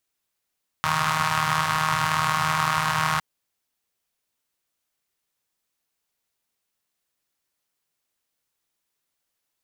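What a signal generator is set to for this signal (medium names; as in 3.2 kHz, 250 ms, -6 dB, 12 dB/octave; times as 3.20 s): four-cylinder engine model, steady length 2.36 s, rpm 4700, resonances 130/1100 Hz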